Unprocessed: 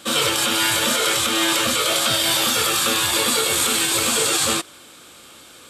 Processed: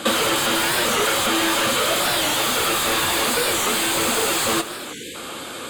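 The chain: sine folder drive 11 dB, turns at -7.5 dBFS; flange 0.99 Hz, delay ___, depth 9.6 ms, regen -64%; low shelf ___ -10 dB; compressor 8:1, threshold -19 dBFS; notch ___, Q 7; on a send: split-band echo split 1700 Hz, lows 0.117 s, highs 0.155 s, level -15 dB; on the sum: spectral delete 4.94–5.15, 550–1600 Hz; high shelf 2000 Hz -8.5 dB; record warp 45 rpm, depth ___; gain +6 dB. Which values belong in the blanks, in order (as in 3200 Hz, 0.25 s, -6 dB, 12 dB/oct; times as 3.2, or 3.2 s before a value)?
0 ms, 150 Hz, 5600 Hz, 160 cents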